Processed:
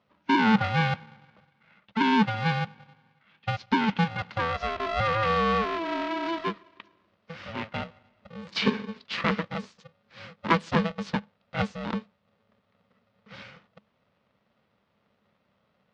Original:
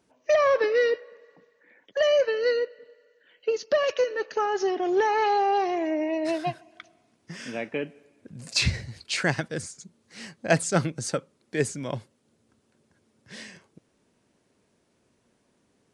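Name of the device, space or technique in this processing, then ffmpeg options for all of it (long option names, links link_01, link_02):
ring modulator pedal into a guitar cabinet: -af "aeval=exprs='val(0)*sgn(sin(2*PI*330*n/s))':channel_layout=same,highpass=95,equalizer=frequency=200:width_type=q:width=4:gain=10,equalizer=frequency=760:width_type=q:width=4:gain=-5,equalizer=frequency=1100:width_type=q:width=4:gain=3,lowpass=frequency=4000:width=0.5412,lowpass=frequency=4000:width=1.3066,volume=-2dB"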